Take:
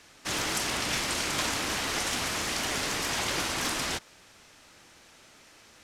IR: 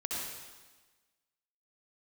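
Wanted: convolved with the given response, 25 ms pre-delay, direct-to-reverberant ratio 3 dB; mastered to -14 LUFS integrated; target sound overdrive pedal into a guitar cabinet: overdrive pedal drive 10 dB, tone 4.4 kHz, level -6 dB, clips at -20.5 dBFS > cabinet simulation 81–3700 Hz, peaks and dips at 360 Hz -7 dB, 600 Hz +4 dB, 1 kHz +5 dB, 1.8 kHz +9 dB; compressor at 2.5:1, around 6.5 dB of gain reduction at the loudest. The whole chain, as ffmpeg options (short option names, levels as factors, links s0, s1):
-filter_complex "[0:a]acompressor=threshold=0.0158:ratio=2.5,asplit=2[s0][s1];[1:a]atrim=start_sample=2205,adelay=25[s2];[s1][s2]afir=irnorm=-1:irlink=0,volume=0.447[s3];[s0][s3]amix=inputs=2:normalize=0,asplit=2[s4][s5];[s5]highpass=f=720:p=1,volume=3.16,asoftclip=type=tanh:threshold=0.0944[s6];[s4][s6]amix=inputs=2:normalize=0,lowpass=f=4400:p=1,volume=0.501,highpass=81,equalizer=f=360:t=q:w=4:g=-7,equalizer=f=600:t=q:w=4:g=4,equalizer=f=1000:t=q:w=4:g=5,equalizer=f=1800:t=q:w=4:g=9,lowpass=f=3700:w=0.5412,lowpass=f=3700:w=1.3066,volume=5.62"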